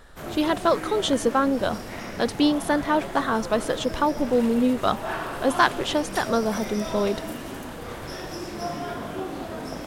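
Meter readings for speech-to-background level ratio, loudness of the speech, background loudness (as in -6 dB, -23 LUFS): 9.0 dB, -24.5 LUFS, -33.5 LUFS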